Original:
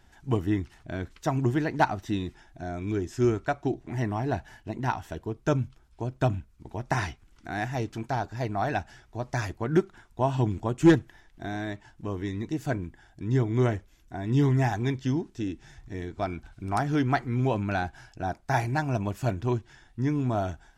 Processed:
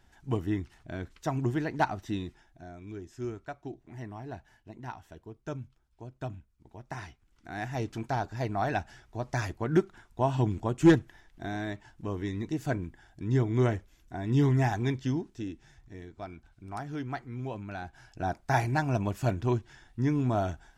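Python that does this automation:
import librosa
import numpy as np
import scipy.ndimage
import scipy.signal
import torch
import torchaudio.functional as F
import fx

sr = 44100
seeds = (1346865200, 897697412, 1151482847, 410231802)

y = fx.gain(x, sr, db=fx.line((2.2, -4.0), (2.78, -12.5), (7.09, -12.5), (7.87, -1.5), (14.94, -1.5), (16.19, -11.0), (17.78, -11.0), (18.21, -0.5)))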